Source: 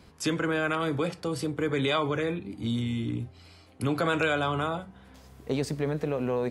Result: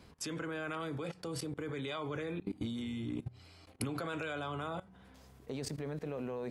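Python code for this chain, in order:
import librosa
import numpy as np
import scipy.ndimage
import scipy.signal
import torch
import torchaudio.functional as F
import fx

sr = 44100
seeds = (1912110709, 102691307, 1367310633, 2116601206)

y = fx.hum_notches(x, sr, base_hz=60, count=3)
y = fx.level_steps(y, sr, step_db=19)
y = fx.transient(y, sr, attack_db=7, sustain_db=2, at=(2.07, 4.33))
y = F.gain(torch.from_numpy(y), -1.0).numpy()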